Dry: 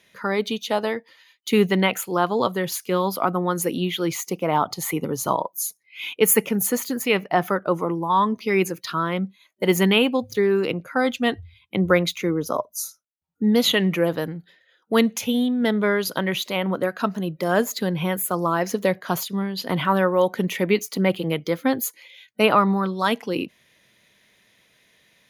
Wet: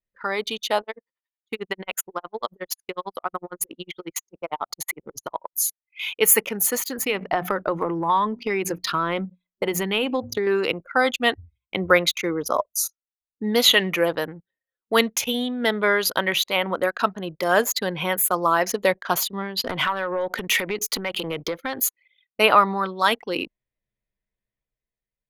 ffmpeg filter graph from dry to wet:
-filter_complex "[0:a]asettb=1/sr,asplit=3[s0][s1][s2];[s0]atrim=end=0.814[s3];[s1]atrim=start=0.81:end=5.54,asetpts=PTS-STARTPTS,afade=t=in:d=0.004:c=qsin,afade=t=out:st=4.726:d=0.004:c=qsin,acompressor=threshold=0.0631:ratio=2:attack=3.2:release=140:knee=1:detection=peak,highpass=f=160:p=1,aeval=exprs='val(0)*pow(10,-26*(0.5-0.5*cos(2*PI*11*n/s))/20)':c=same[s4];[s2]atrim=start=5.536[s5];[s3][s4]acrossfade=d=0.004:c1=hsin:c2=qsin[s6];[s6][s5]acrossfade=d=0.004:c1=qsin:c2=hsin,asettb=1/sr,asplit=3[s7][s8][s9];[s7]atrim=end=6.984[s10];[s8]atrim=start=6.98:end=10.47,asetpts=PTS-STARTPTS,afade=t=in:d=0.004:c=qsin,afade=t=out:st=3.486:d=0.004:c=qsin,lowshelf=f=420:g=9.5,bandreject=f=60:t=h:w=6,bandreject=f=120:t=h:w=6,bandreject=f=180:t=h:w=6,bandreject=f=240:t=h:w=6,bandreject=f=300:t=h:w=6,acompressor=threshold=0.126:ratio=12:attack=3.2:release=140:knee=1:detection=peak[s11];[s9]atrim=start=10.466[s12];[s10][s11]acrossfade=d=0.004:c1=hsin:c2=qsin[s13];[s13][s12]acrossfade=d=0.004:c1=qsin:c2=hsin,asettb=1/sr,asplit=3[s14][s15][s16];[s14]atrim=end=19.644[s17];[s15]atrim=start=19.64:end=21.8,asetpts=PTS-STARTPTS,afade=t=in:d=0.004:c=qsin,afade=t=out:st=2.156:d=0.004:c=qsin,acompressor=threshold=0.0501:ratio=16:attack=3.2:release=140:knee=1:detection=peak,acrossover=split=750[s18][s19];[s18]aeval=exprs='val(0)*(1-0.5/2+0.5/2*cos(2*PI*1.7*n/s))':c=same[s20];[s19]aeval=exprs='val(0)*(1-0.5/2-0.5/2*cos(2*PI*1.7*n/s))':c=same[s21];[s20][s21]amix=inputs=2:normalize=0,aeval=exprs='0.119*sin(PI/2*1.58*val(0)/0.119)':c=same[s22];[s16]atrim=start=21.796[s23];[s17][s22]acrossfade=d=0.004:c1=hsin:c2=qsin[s24];[s24][s23]acrossfade=d=0.004:c1=qsin:c2=hsin,anlmdn=3.98,equalizer=f=170:t=o:w=2.4:g=-13,dynaudnorm=f=130:g=11:m=1.68,volume=1.12"

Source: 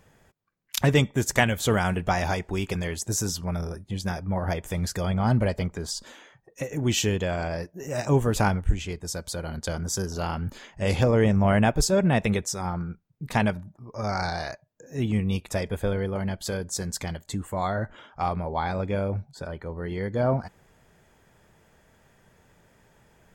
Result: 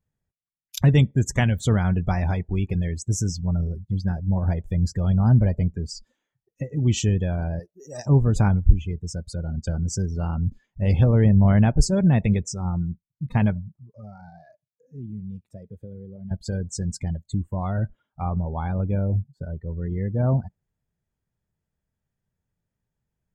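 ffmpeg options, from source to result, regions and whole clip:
-filter_complex "[0:a]asettb=1/sr,asplit=3[s0][s1][s2];[s0]atrim=end=7.594[s3];[s1]atrim=start=7.59:end=8.06,asetpts=PTS-STARTPTS,afade=t=in:d=0.004:c=qsin,afade=t=out:st=0.466:d=0.004:c=qsin,aeval=exprs='if(lt(val(0),0),0.708*val(0),val(0))':c=same,bass=f=250:g=-13,treble=f=4000:g=9[s4];[s2]atrim=start=8.056[s5];[s3][s4]acrossfade=d=0.004:c1=hsin:c2=qsin[s6];[s6][s5]acrossfade=d=0.004:c1=qsin:c2=hsin,asettb=1/sr,asplit=3[s7][s8][s9];[s7]atrim=end=13.804[s10];[s8]atrim=start=13.8:end=16.31,asetpts=PTS-STARTPTS,afade=t=in:d=0.004:c=qsin,afade=t=out:st=2.506:d=0.004:c=qsin,highpass=120,acompressor=threshold=0.00631:ratio=2:attack=3.2:release=140:knee=1:detection=peak[s11];[s9]atrim=start=16.306[s12];[s10][s11]acrossfade=d=0.004:c1=hsin:c2=qsin[s13];[s13][s12]acrossfade=d=0.004:c1=qsin:c2=hsin,afftdn=nr=26:nf=-33,bass=f=250:g=13,treble=f=4000:g=4,volume=0.562"

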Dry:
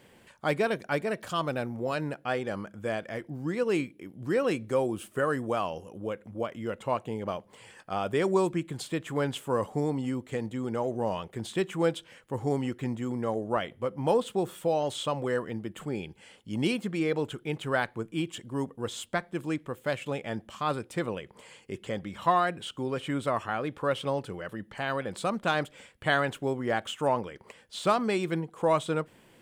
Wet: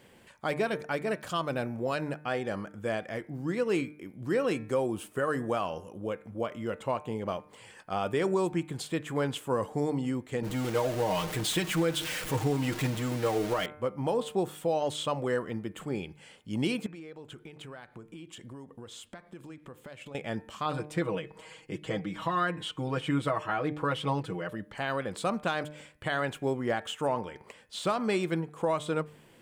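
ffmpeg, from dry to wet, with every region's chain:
-filter_complex "[0:a]asettb=1/sr,asplit=3[s0][s1][s2];[s0]atrim=end=10.424[s3];[s1]atrim=start=10.42:end=13.66,asetpts=PTS-STARTPTS,afade=t=in:d=0.004:c=qsin,afade=t=out:st=3.236:d=0.004:c=qsin,aeval=exprs='val(0)+0.5*0.0188*sgn(val(0))':c=same,aecho=1:1:6.5:0.65,atrim=end_sample=142884,adynamicequalizer=threshold=0.00794:dfrequency=1500:dqfactor=0.7:tfrequency=1500:tqfactor=0.7:attack=5:release=100:ratio=0.375:range=2:mode=boostabove:tftype=highshelf[s4];[s2]atrim=start=13.656[s5];[s3][s4]acrossfade=d=0.004:c1=hsin:c2=qsin[s6];[s6][s5]acrossfade=d=0.004:c1=qsin:c2=hsin,asettb=1/sr,asplit=3[s7][s8][s9];[s7]atrim=end=16.864[s10];[s8]atrim=start=16.86:end=20.15,asetpts=PTS-STARTPTS,afade=t=in:d=0.004:c=qsin,afade=t=out:st=3.286:d=0.004:c=qsin,acompressor=threshold=0.00891:ratio=12:attack=3.2:release=140:knee=1:detection=peak,highshelf=f=12000:g=-5.5[s11];[s9]atrim=start=20.146[s12];[s10][s11]acrossfade=d=0.004:c1=hsin:c2=qsin[s13];[s13][s12]acrossfade=d=0.004:c1=qsin:c2=hsin,asettb=1/sr,asplit=3[s14][s15][s16];[s14]atrim=end=20.654[s17];[s15]atrim=start=20.65:end=24.51,asetpts=PTS-STARTPTS,afade=t=in:d=0.004:c=qsin,afade=t=out:st=3.856:d=0.004:c=qsin,highshelf=f=6400:g=-6.5,aecho=1:1:6.3:0.96,atrim=end_sample=170226[s18];[s16]atrim=start=24.506[s19];[s17][s18]acrossfade=d=0.004:c1=hsin:c2=qsin[s20];[s20][s19]acrossfade=d=0.004:c1=qsin:c2=hsin,bandreject=f=150.3:t=h:w=4,bandreject=f=300.6:t=h:w=4,bandreject=f=450.9:t=h:w=4,bandreject=f=601.2:t=h:w=4,bandreject=f=751.5:t=h:w=4,bandreject=f=901.8:t=h:w=4,bandreject=f=1052.1:t=h:w=4,bandreject=f=1202.4:t=h:w=4,bandreject=f=1352.7:t=h:w=4,bandreject=f=1503:t=h:w=4,bandreject=f=1653.3:t=h:w=4,bandreject=f=1803.6:t=h:w=4,bandreject=f=1953.9:t=h:w=4,bandreject=f=2104.2:t=h:w=4,bandreject=f=2254.5:t=h:w=4,bandreject=f=2404.8:t=h:w=4,bandreject=f=2555.1:t=h:w=4,alimiter=limit=0.119:level=0:latency=1:release=173"

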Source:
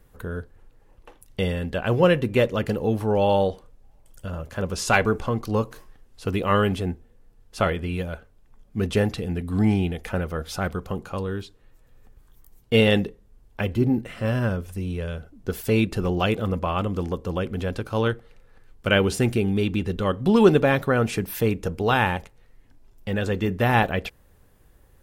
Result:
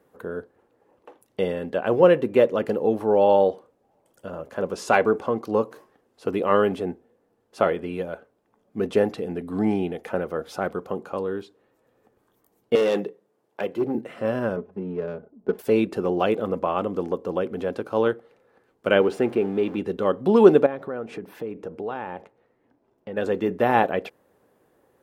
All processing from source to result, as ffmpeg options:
-filter_complex "[0:a]asettb=1/sr,asplit=3[s0][s1][s2];[s0]atrim=end=12.754[s3];[s1]atrim=start=12.75:end=13.95,asetpts=PTS-STARTPTS,afade=t=in:d=0.004:c=qsin,afade=t=out:st=1.196:d=0.004:c=qsin,highpass=f=140:w=0.5412,highpass=f=140:w=1.3066,equalizer=f=240:w=4.5:g=-12,volume=8.91,asoftclip=hard,volume=0.112[s4];[s2]atrim=start=13.946[s5];[s3][s4]acrossfade=d=0.004:c1=hsin:c2=qsin[s6];[s6][s5]acrossfade=d=0.004:c1=qsin:c2=hsin,asettb=1/sr,asplit=3[s7][s8][s9];[s7]atrim=end=14.564[s10];[s8]atrim=start=14.56:end=15.59,asetpts=PTS-STARTPTS,afade=t=in:d=0.004:c=qsin,afade=t=out:st=1.026:d=0.004:c=qsin,aecho=1:1:4.8:0.66,atrim=end_sample=45423,adynamicsmooth=sensitivity=2:basefreq=810[s11];[s9]atrim=start=15.586[s12];[s10][s11]acrossfade=d=0.004:c1=hsin:c2=qsin[s13];[s13][s12]acrossfade=d=0.004:c1=qsin:c2=hsin,asettb=1/sr,asplit=3[s14][s15][s16];[s14]atrim=end=19.014[s17];[s15]atrim=start=19.01:end=19.78,asetpts=PTS-STARTPTS,afade=t=in:d=0.004:c=qsin,afade=t=out:st=0.766:d=0.004:c=qsin,aeval=exprs='val(0)+0.5*0.02*sgn(val(0))':c=same,bass=f=250:g=-5,treble=f=4000:g=-11[s18];[s16]atrim=start=19.776[s19];[s17][s18]acrossfade=d=0.004:c1=hsin:c2=qsin[s20];[s20][s19]acrossfade=d=0.004:c1=qsin:c2=hsin,asettb=1/sr,asplit=3[s21][s22][s23];[s21]atrim=end=20.664[s24];[s22]atrim=start=20.66:end=23.17,asetpts=PTS-STARTPTS,afade=t=in:d=0.004:c=qsin,afade=t=out:st=2.506:d=0.004:c=qsin,lowpass=f=2200:p=1,acompressor=threshold=0.0316:ratio=4:attack=3.2:release=140:knee=1:detection=peak[s25];[s23]atrim=start=23.166[s26];[s24][s25]acrossfade=d=0.004:c1=hsin:c2=qsin[s27];[s27][s26]acrossfade=d=0.004:c1=qsin:c2=hsin,highpass=350,tiltshelf=f=1300:g=8,volume=0.891"

